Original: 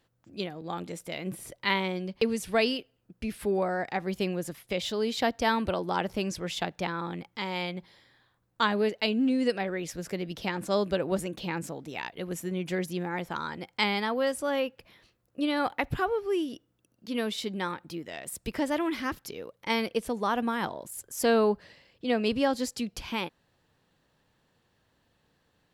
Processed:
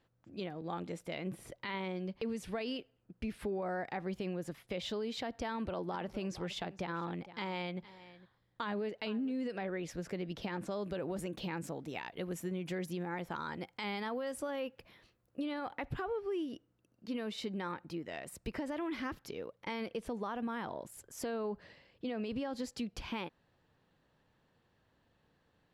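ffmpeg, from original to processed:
-filter_complex "[0:a]asettb=1/sr,asplit=3[s0][s1][s2];[s0]atrim=end=5.464[s3];[s1]atrim=start=5.46:end=9.32,asetpts=PTS-STARTPTS,afade=t=in:d=0.004:c=qsin,afade=t=out:st=3.856:d=0.004:c=qsin,aecho=1:1:458:0.0944,atrim=end_sample=170226[s4];[s2]atrim=start=9.316[s5];[s3][s4]acrossfade=d=0.004:c1=hsin:c2=qsin[s6];[s6][s5]acrossfade=d=0.004:c1=qsin:c2=hsin,asettb=1/sr,asplit=3[s7][s8][s9];[s7]atrim=end=10.824[s10];[s8]atrim=start=10.82:end=15.44,asetpts=PTS-STARTPTS,afade=t=in:d=0.004:c=qsin,afade=t=out:st=4.616:d=0.004:c=qsin,highshelf=f=8200:g=10[s11];[s9]atrim=start=15.436[s12];[s10][s11]acrossfade=d=0.004:c1=hsin:c2=qsin[s13];[s13][s12]acrossfade=d=0.004:c1=qsin:c2=hsin,asettb=1/sr,asplit=3[s14][s15][s16];[s14]atrim=end=16.464[s17];[s15]atrim=start=16.46:end=18.73,asetpts=PTS-STARTPTS,afade=t=in:d=0.004:c=qsin,afade=t=out:st=2.266:d=0.004:c=qsin,bandreject=f=3400:w=12[s18];[s16]atrim=start=18.726[s19];[s17][s18]acrossfade=d=0.004:c1=hsin:c2=qsin[s20];[s20][s19]acrossfade=d=0.004:c1=qsin:c2=hsin,alimiter=limit=0.0708:level=0:latency=1:release=38,lowpass=f=2800:p=1,acompressor=threshold=0.0224:ratio=3,volume=0.794"

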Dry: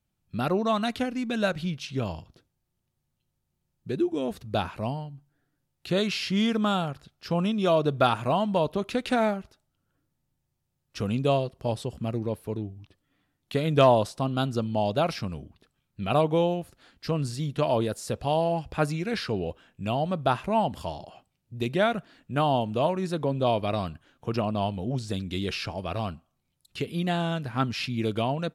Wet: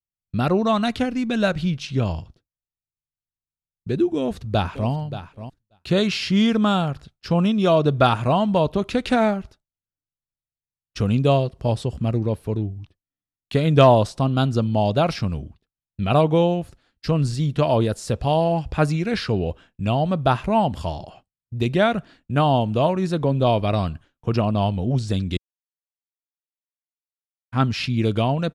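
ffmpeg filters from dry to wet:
-filter_complex "[0:a]asplit=2[s0][s1];[s1]afade=t=in:st=4.17:d=0.01,afade=t=out:st=4.91:d=0.01,aecho=0:1:580|1160:0.237137|0.0355706[s2];[s0][s2]amix=inputs=2:normalize=0,asplit=3[s3][s4][s5];[s3]atrim=end=25.37,asetpts=PTS-STARTPTS,afade=t=out:st=25.366:d=0.004:c=hsin[s6];[s4]atrim=start=25.37:end=27.52,asetpts=PTS-STARTPTS,volume=0[s7];[s5]atrim=start=27.52,asetpts=PTS-STARTPTS,afade=t=in:d=0.004:c=hsin[s8];[s6][s7][s8]concat=n=3:v=0:a=1,agate=range=0.0224:threshold=0.00562:ratio=3:detection=peak,lowpass=9400,lowshelf=f=110:g=11,volume=1.68"

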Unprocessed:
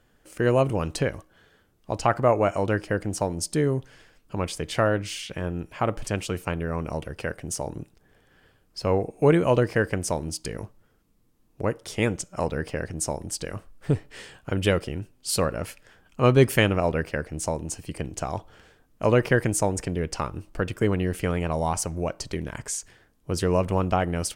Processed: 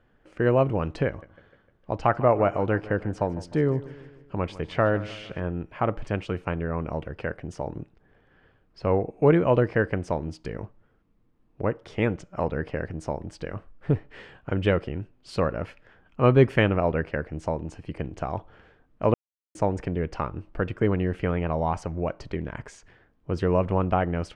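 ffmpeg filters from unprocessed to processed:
-filter_complex "[0:a]asettb=1/sr,asplit=3[s0][s1][s2];[s0]atrim=end=1.074[s3];[s1]atrim=start=1.07:end=5.4,asetpts=PTS-STARTPTS,afade=t=in:d=0.004:c=qsin,afade=t=out:st=4.326:d=0.004:c=qsin,aecho=1:1:152|304|456|608|760:0.133|0.0707|0.0375|0.0199|0.0105,atrim=end_sample=190953[s4];[s2]atrim=start=5.396[s5];[s3][s4]acrossfade=d=0.004:c1=hsin:c2=qsin[s6];[s6][s5]acrossfade=d=0.004:c1=qsin:c2=hsin,asplit=3[s7][s8][s9];[s7]atrim=end=19.14,asetpts=PTS-STARTPTS,afade=t=out:st=19.136:d=0.004:c=hsin[s10];[s8]atrim=start=19.14:end=19.55,asetpts=PTS-STARTPTS,volume=0[s11];[s9]atrim=start=19.55,asetpts=PTS-STARTPTS,afade=t=in:d=0.004:c=hsin[s12];[s10][s11][s12]concat=n=3:v=0:a=1,lowpass=2300"

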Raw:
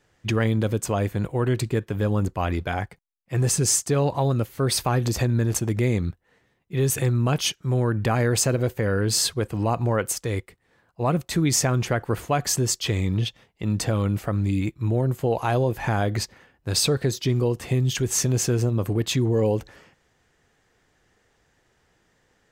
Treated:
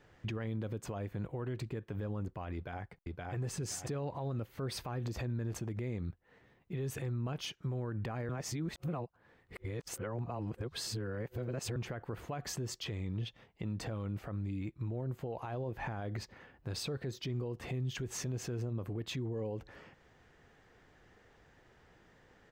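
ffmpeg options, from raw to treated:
-filter_complex "[0:a]asplit=2[s0][s1];[s1]afade=t=in:st=2.54:d=0.01,afade=t=out:st=3.34:d=0.01,aecho=0:1:520|1040|1560:0.473151|0.118288|0.029572[s2];[s0][s2]amix=inputs=2:normalize=0,asettb=1/sr,asplit=3[s3][s4][s5];[s3]atrim=end=15.494[s6];[s4]atrim=start=15.49:end=16.02,asetpts=PTS-STARTPTS,afade=t=in:d=0.004:c=qsin,afade=t=out:st=0.526:d=0.004:c=qsin,highshelf=f=6500:g=-5.5[s7];[s5]atrim=start=16.016[s8];[s6][s7]acrossfade=d=0.004:c1=hsin:c2=qsin[s9];[s9][s8]acrossfade=d=0.004:c1=qsin:c2=hsin,asplit=3[s10][s11][s12];[s10]atrim=end=8.292[s13];[s11]atrim=start=8.288:end=11.762,asetpts=PTS-STARTPTS,areverse[s14];[s12]atrim=start=11.758[s15];[s13][s14]acrossfade=d=0.004:c1=hsin:c2=hsin[s16];[s16][s15]acrossfade=d=0.004:c1=hsin:c2=hsin,equalizer=f=10000:w=0.48:g=-13.5,acompressor=threshold=0.00355:ratio=1.5,alimiter=level_in=2.99:limit=0.0631:level=0:latency=1:release=155,volume=0.335,volume=1.41"

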